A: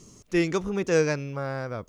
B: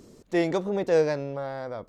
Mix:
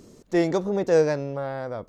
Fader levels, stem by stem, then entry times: -12.0, +1.0 dB; 0.00, 0.00 s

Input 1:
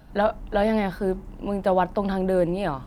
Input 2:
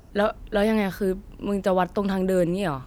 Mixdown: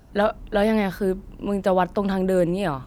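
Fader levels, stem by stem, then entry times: -6.5, -2.5 dB; 0.00, 0.00 s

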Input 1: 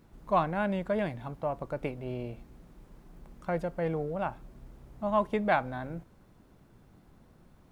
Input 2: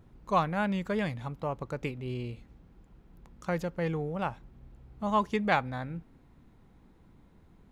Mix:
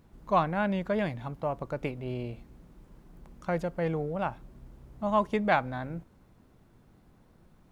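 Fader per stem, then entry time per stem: -2.0, -8.0 dB; 0.00, 0.00 s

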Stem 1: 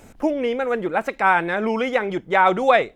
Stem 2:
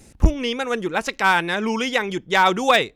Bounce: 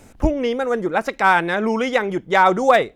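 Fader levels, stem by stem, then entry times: -1.0, -6.5 dB; 0.00, 0.00 s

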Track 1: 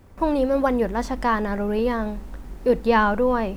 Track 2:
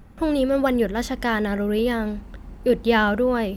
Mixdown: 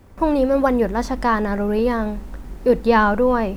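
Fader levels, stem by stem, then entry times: +2.5, -15.0 dB; 0.00, 0.00 s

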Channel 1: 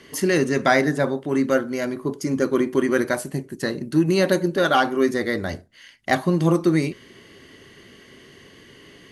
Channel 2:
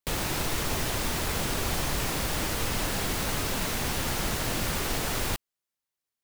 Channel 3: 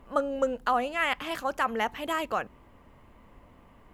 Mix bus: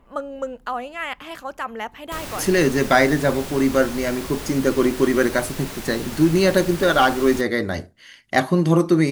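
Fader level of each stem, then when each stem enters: +2.0, -4.0, -1.5 dB; 2.25, 2.05, 0.00 s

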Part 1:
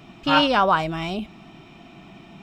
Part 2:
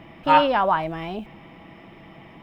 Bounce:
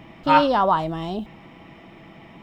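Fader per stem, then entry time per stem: -8.0, -0.5 dB; 0.00, 0.00 s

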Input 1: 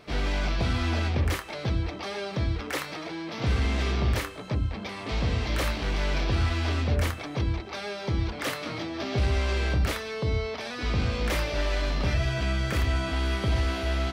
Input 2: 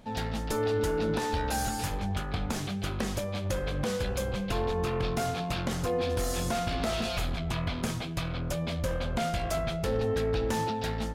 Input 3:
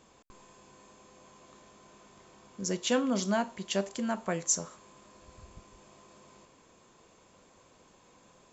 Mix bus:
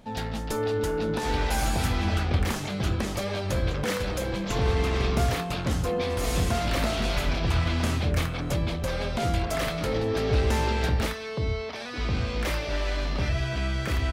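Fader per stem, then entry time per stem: -1.0, +1.0, -17.0 dB; 1.15, 0.00, 0.00 s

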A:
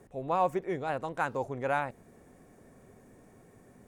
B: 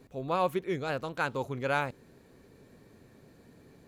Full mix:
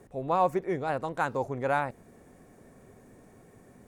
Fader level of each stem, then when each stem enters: +2.0, -15.5 dB; 0.00, 0.00 s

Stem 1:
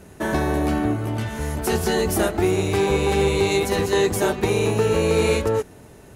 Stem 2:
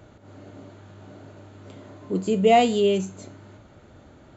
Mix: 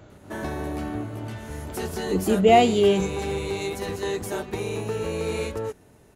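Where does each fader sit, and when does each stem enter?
-9.0, +1.0 dB; 0.10, 0.00 s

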